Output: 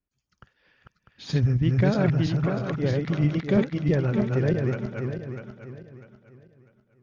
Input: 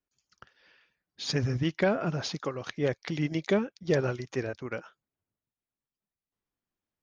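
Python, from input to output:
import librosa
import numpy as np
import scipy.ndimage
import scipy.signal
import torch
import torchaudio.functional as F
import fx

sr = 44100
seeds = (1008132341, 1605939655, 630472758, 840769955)

y = fx.reverse_delay_fb(x, sr, ms=324, feedback_pct=54, wet_db=-1.0)
y = fx.bass_treble(y, sr, bass_db=11, treble_db=-8)
y = y * 10.0 ** (-2.0 / 20.0)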